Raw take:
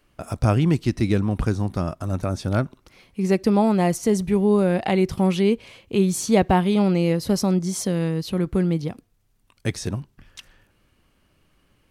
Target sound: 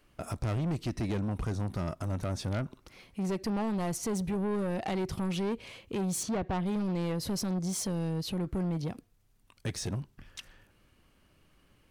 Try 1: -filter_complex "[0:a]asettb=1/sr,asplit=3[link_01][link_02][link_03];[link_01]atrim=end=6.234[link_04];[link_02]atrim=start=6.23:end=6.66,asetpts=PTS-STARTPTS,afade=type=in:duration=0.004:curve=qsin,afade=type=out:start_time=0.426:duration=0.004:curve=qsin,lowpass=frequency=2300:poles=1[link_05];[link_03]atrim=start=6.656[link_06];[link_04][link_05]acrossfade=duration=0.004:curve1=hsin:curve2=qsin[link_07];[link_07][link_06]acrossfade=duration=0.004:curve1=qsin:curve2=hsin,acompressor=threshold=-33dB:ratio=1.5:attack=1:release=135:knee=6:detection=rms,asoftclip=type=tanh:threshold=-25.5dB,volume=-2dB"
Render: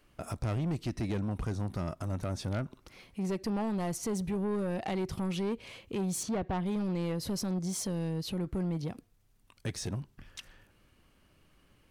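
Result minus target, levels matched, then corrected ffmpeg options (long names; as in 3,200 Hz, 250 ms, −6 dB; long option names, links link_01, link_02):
downward compressor: peak gain reduction +2.5 dB
-filter_complex "[0:a]asettb=1/sr,asplit=3[link_01][link_02][link_03];[link_01]atrim=end=6.234[link_04];[link_02]atrim=start=6.23:end=6.66,asetpts=PTS-STARTPTS,afade=type=in:duration=0.004:curve=qsin,afade=type=out:start_time=0.426:duration=0.004:curve=qsin,lowpass=frequency=2300:poles=1[link_05];[link_03]atrim=start=6.656[link_06];[link_04][link_05]acrossfade=duration=0.004:curve1=hsin:curve2=qsin[link_07];[link_07][link_06]acrossfade=duration=0.004:curve1=qsin:curve2=hsin,acompressor=threshold=-25.5dB:ratio=1.5:attack=1:release=135:knee=6:detection=rms,asoftclip=type=tanh:threshold=-25.5dB,volume=-2dB"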